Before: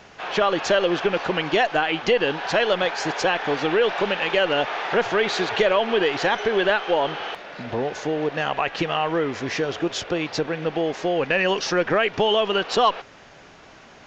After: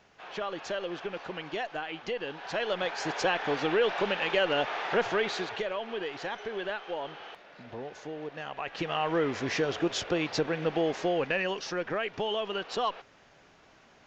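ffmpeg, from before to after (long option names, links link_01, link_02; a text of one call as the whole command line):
ffmpeg -i in.wav -af "volume=4.5dB,afade=type=in:start_time=2.33:duration=0.92:silence=0.375837,afade=type=out:start_time=5.07:duration=0.58:silence=0.375837,afade=type=in:start_time=8.55:duration=0.69:silence=0.298538,afade=type=out:start_time=10.97:duration=0.58:silence=0.421697" out.wav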